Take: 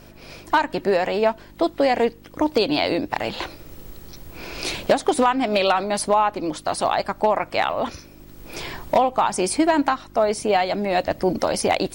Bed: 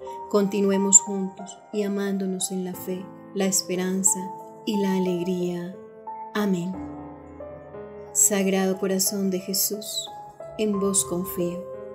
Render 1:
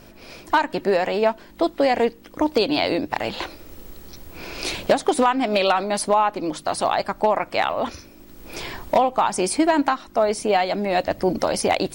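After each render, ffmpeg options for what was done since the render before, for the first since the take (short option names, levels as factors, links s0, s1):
-af "bandreject=f=50:t=h:w=4,bandreject=f=100:t=h:w=4,bandreject=f=150:t=h:w=4"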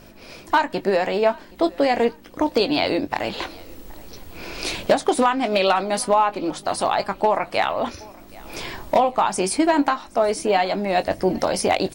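-filter_complex "[0:a]asplit=2[s0][s1];[s1]adelay=21,volume=0.266[s2];[s0][s2]amix=inputs=2:normalize=0,aecho=1:1:773|1546|2319:0.0631|0.0271|0.0117"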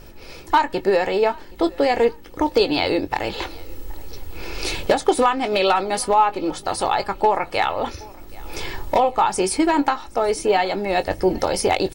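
-af "lowshelf=f=89:g=7.5,aecho=1:1:2.3:0.43"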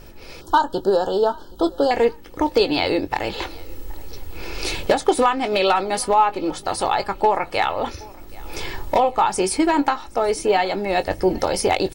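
-filter_complex "[0:a]asettb=1/sr,asplit=3[s0][s1][s2];[s0]atrim=end=0.414[s3];[s1]atrim=start=0.41:end=1.91,asetpts=PTS-STARTPTS,afade=t=in:d=0.004:c=qsin,afade=t=out:st=1.496:d=0.004:c=qsin,asuperstop=centerf=2200:order=12:qfactor=1.6[s4];[s2]atrim=start=1.906[s5];[s3][s4]acrossfade=d=0.004:c1=hsin:c2=qsin[s6];[s6][s5]acrossfade=d=0.004:c1=qsin:c2=hsin"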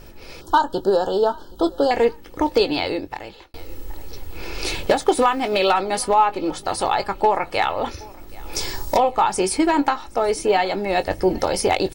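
-filter_complex "[0:a]asettb=1/sr,asplit=3[s0][s1][s2];[s0]atrim=end=4.684[s3];[s1]atrim=start=4.68:end=5.72,asetpts=PTS-STARTPTS,afade=t=in:d=0.004:c=qsin,afade=t=out:st=1.036:d=0.004:c=qsin,acrusher=bits=9:dc=4:mix=0:aa=0.000001[s4];[s2]atrim=start=5.716[s5];[s3][s4]acrossfade=d=0.004:c1=hsin:c2=qsin[s6];[s6][s5]acrossfade=d=0.004:c1=qsin:c2=hsin,asettb=1/sr,asplit=3[s7][s8][s9];[s7]atrim=end=8.554[s10];[s8]atrim=start=8.55:end=8.97,asetpts=PTS-STARTPTS,afade=t=in:d=0.004:c=qsin,afade=t=out:st=0.416:d=0.004:c=qsin,highshelf=f=3900:t=q:w=1.5:g=9[s11];[s9]atrim=start=8.966[s12];[s10][s11]acrossfade=d=0.004:c1=hsin:c2=qsin[s13];[s13][s12]acrossfade=d=0.004:c1=qsin:c2=hsin,asplit=2[s14][s15];[s14]atrim=end=3.54,asetpts=PTS-STARTPTS,afade=t=out:st=2.56:d=0.98[s16];[s15]atrim=start=3.54,asetpts=PTS-STARTPTS,afade=t=in:d=0.004:c=hsin[s17];[s16][s17]concat=n=2:v=0:a=1"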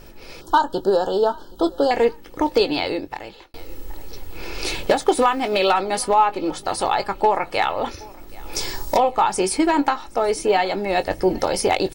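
-af "equalizer=f=71:w=1.5:g=-5.5"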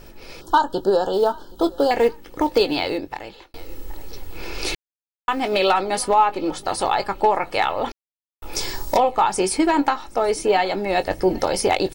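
-filter_complex "[0:a]asettb=1/sr,asplit=3[s0][s1][s2];[s0]atrim=end=1.134[s3];[s1]atrim=start=1.13:end=2.98,asetpts=PTS-STARTPTS,afade=t=in:d=0.004:c=qsin,afade=t=out:st=1.846:d=0.004:c=qsin,acrusher=bits=8:mode=log:mix=0:aa=0.000001[s4];[s2]atrim=start=2.976[s5];[s3][s4]acrossfade=d=0.004:c1=hsin:c2=qsin[s6];[s6][s5]acrossfade=d=0.004:c1=qsin:c2=hsin,asplit=5[s7][s8][s9][s10][s11];[s7]atrim=end=4.75,asetpts=PTS-STARTPTS,afade=t=out:st=4.746:d=0.004:c=hsin[s12];[s8]atrim=start=4.75:end=5.28,asetpts=PTS-STARTPTS,volume=0[s13];[s9]atrim=start=5.28:end=7.92,asetpts=PTS-STARTPTS,afade=t=in:d=0.004:c=hsin,afade=t=out:st=2.636:d=0.004:c=hsin[s14];[s10]atrim=start=7.92:end=8.42,asetpts=PTS-STARTPTS,volume=0[s15];[s11]atrim=start=8.42,asetpts=PTS-STARTPTS,afade=t=in:d=0.004:c=hsin[s16];[s12][s13][s14][s15][s16]concat=n=5:v=0:a=1"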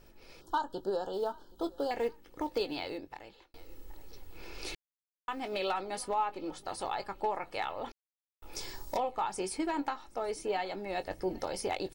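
-af "volume=0.178"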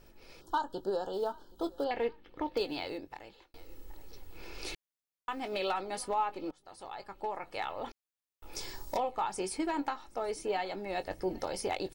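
-filter_complex "[0:a]asettb=1/sr,asplit=3[s0][s1][s2];[s0]atrim=end=1.844[s3];[s1]atrim=start=1.84:end=2.57,asetpts=PTS-STARTPTS,afade=t=in:d=0.004:c=qsin,afade=t=out:st=0.726:d=0.004:c=qsin,highshelf=f=5000:t=q:w=1.5:g=-13.5[s4];[s2]atrim=start=2.566[s5];[s3][s4]acrossfade=d=0.004:c1=hsin:c2=qsin[s6];[s6][s5]acrossfade=d=0.004:c1=qsin:c2=hsin,asplit=2[s7][s8];[s7]atrim=end=6.51,asetpts=PTS-STARTPTS,afade=t=out:st=6.506:d=0.004:c=hsin:silence=0.0891251[s9];[s8]atrim=start=6.51,asetpts=PTS-STARTPTS,afade=t=in:d=1.32:silence=0.0891251[s10];[s9][s10]concat=n=2:v=0:a=1"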